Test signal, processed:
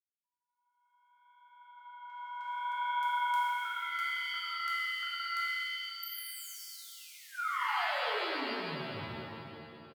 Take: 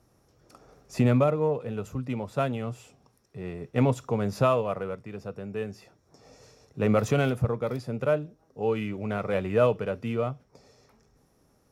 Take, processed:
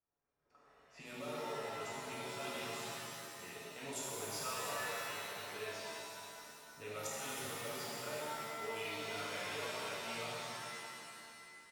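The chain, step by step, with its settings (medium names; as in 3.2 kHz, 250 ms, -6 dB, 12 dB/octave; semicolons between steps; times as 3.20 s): level rider gain up to 16 dB; peak limiter -10.5 dBFS; level-controlled noise filter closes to 1.2 kHz, open at -14.5 dBFS; flange 0.73 Hz, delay 1.9 ms, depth 8.2 ms, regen -77%; pre-emphasis filter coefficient 0.97; comb 7 ms, depth 45%; inverted gate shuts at -23 dBFS, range -32 dB; pitch-shifted reverb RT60 2.4 s, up +7 st, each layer -2 dB, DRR -6.5 dB; trim -7 dB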